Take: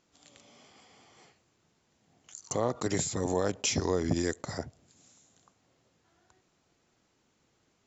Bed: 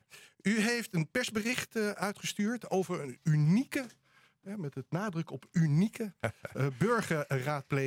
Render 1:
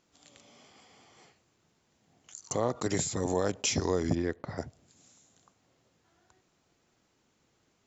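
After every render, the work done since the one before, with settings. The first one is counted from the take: 4.15–4.58 s: distance through air 320 m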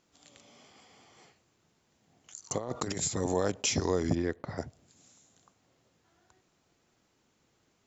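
2.58–3.08 s: compressor with a negative ratio -33 dBFS, ratio -0.5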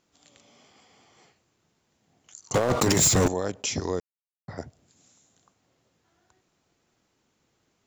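2.54–3.28 s: waveshaping leveller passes 5; 4.00–4.48 s: mute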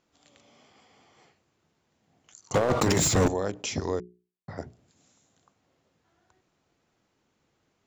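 treble shelf 5.3 kHz -8.5 dB; hum notches 60/120/180/240/300/360/420 Hz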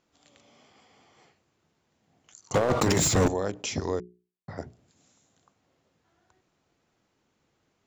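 no audible change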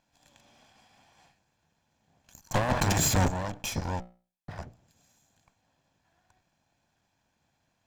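comb filter that takes the minimum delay 1.2 ms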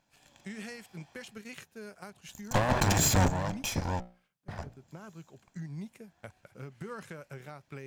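add bed -13 dB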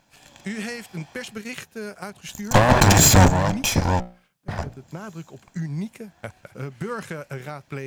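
trim +11.5 dB; peak limiter -3 dBFS, peak gain reduction 1 dB

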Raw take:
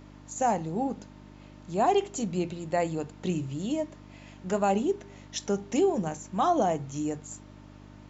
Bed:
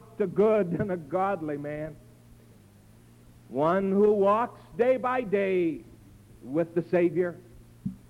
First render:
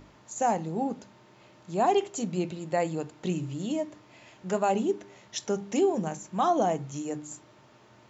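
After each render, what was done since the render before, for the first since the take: de-hum 50 Hz, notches 6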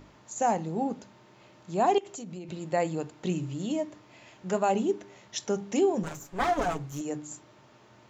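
1.98–2.49 s: compression, threshold -37 dBFS; 6.03–7.01 s: comb filter that takes the minimum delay 7.1 ms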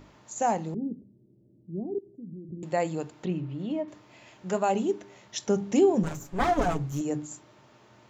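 0.74–2.63 s: inverse Chebyshev low-pass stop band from 1.2 kHz, stop band 60 dB; 3.25–3.88 s: distance through air 320 m; 5.47–7.26 s: bass shelf 340 Hz +8 dB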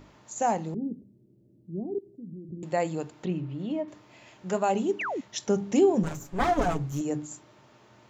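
4.99–5.21 s: painted sound fall 230–3000 Hz -31 dBFS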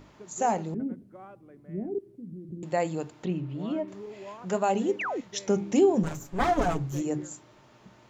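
add bed -20.5 dB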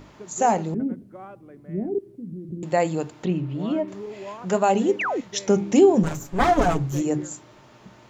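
trim +6 dB

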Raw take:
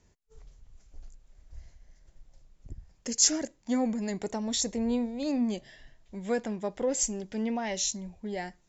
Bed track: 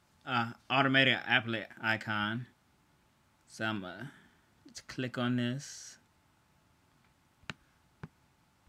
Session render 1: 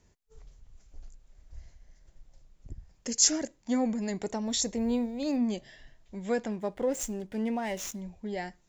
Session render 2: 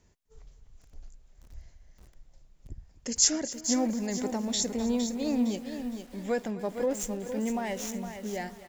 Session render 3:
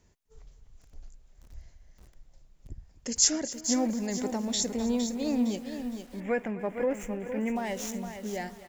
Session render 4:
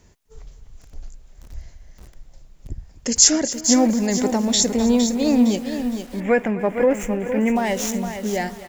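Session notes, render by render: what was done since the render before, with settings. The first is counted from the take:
4.46–5.37 s: short-mantissa float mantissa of 6-bit; 6.52–8.02 s: median filter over 9 samples
feedback delay 254 ms, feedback 32%, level -17 dB; bit-crushed delay 460 ms, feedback 35%, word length 8-bit, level -8 dB
6.20–7.56 s: resonant high shelf 3.1 kHz -10 dB, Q 3
trim +11 dB; peak limiter -1 dBFS, peak gain reduction 3 dB

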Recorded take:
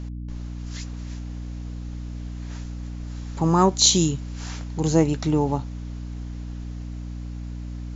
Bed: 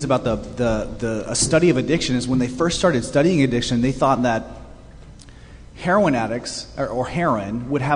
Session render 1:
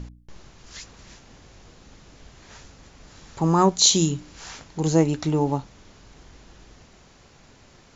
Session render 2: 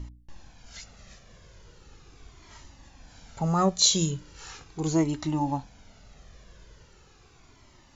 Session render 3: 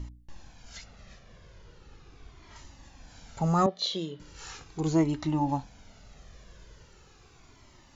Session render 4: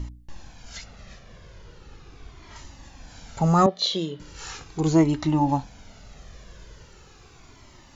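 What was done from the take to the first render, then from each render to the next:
de-hum 60 Hz, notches 5
Shepard-style flanger falling 0.39 Hz
0.78–2.56 s: distance through air 100 m; 3.66–4.20 s: cabinet simulation 340–3400 Hz, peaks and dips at 1 kHz -8 dB, 1.5 kHz -7 dB, 2.5 kHz -10 dB; 4.81–5.49 s: distance through air 90 m
trim +6 dB

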